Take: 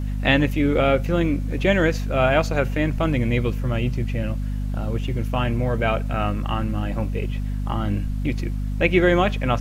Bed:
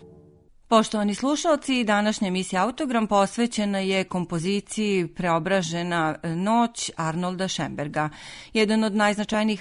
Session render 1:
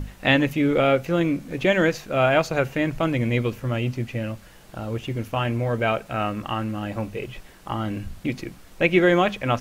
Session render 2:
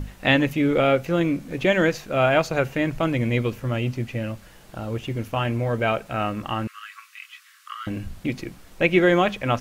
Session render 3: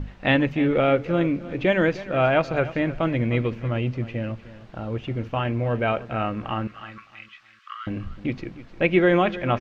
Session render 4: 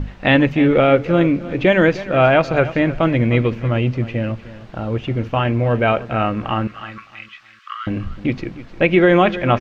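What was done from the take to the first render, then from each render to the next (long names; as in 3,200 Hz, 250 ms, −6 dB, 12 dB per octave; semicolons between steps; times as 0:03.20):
mains-hum notches 50/100/150/200/250 Hz
0:06.67–0:07.87: Chebyshev high-pass filter 1,100 Hz, order 8
high-frequency loss of the air 200 metres; repeating echo 306 ms, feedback 27%, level −16 dB
level +7 dB; brickwall limiter −3 dBFS, peak gain reduction 3 dB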